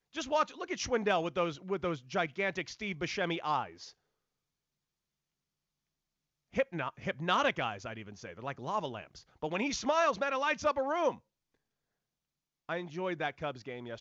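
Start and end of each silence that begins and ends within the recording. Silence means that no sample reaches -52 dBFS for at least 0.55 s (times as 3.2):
3.91–6.54
11.18–12.69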